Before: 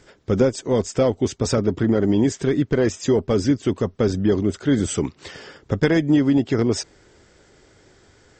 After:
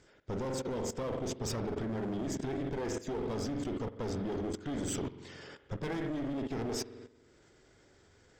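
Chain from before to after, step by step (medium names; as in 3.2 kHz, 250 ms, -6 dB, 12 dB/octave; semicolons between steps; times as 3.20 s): spring tank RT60 1.1 s, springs 45 ms, chirp 35 ms, DRR 6 dB; one-sided clip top -26.5 dBFS; level held to a coarse grid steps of 14 dB; trim -7 dB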